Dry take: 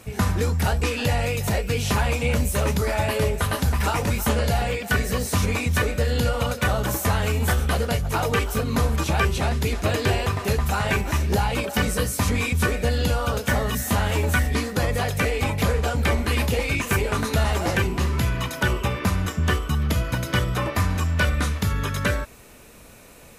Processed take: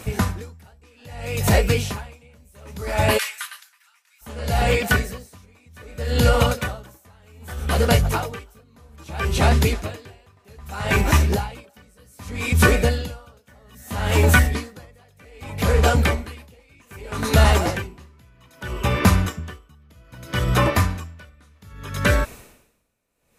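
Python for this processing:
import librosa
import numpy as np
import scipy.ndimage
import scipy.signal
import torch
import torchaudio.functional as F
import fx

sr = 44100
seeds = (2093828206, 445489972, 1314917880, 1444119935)

y = fx.highpass(x, sr, hz=1400.0, slope=24, at=(3.17, 4.21), fade=0.02)
y = y * 10.0 ** (-37 * (0.5 - 0.5 * np.cos(2.0 * np.pi * 0.63 * np.arange(len(y)) / sr)) / 20.0)
y = F.gain(torch.from_numpy(y), 7.5).numpy()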